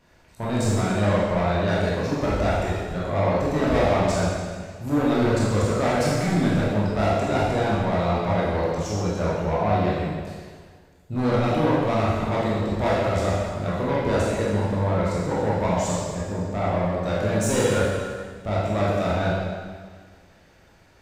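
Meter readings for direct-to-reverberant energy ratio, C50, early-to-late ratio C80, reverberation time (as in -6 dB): -7.5 dB, -2.5 dB, 0.5 dB, 1.7 s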